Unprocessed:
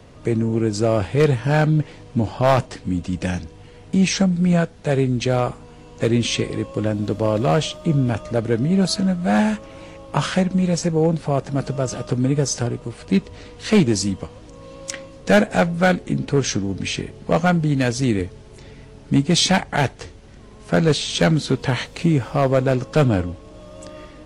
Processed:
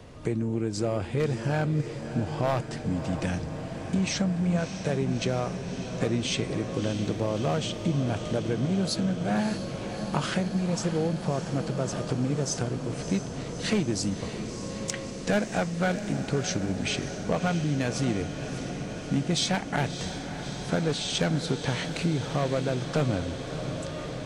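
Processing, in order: compressor 2.5:1, threshold -26 dBFS, peak gain reduction 10.5 dB; on a send: diffused feedback echo 0.626 s, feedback 79%, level -10 dB; on the sum: gain -1.5 dB

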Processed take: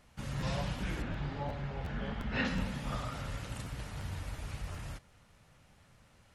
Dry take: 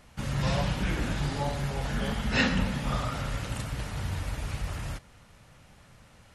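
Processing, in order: 1.02–2.45 LPF 2900 Hz 12 dB/oct; crackling interface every 0.36 s, samples 512, repeat, from 0.4; gain -7.5 dB

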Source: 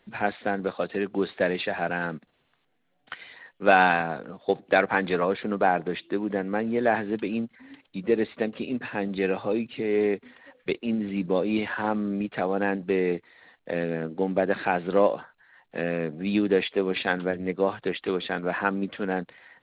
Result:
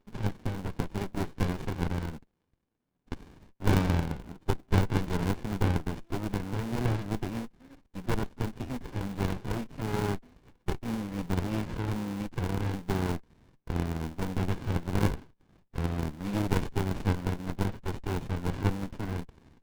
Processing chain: in parallel at -7 dB: sample-rate reducer 1000 Hz, jitter 20%; on the sum: low shelf 290 Hz -11 dB; running maximum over 65 samples; gain -1.5 dB

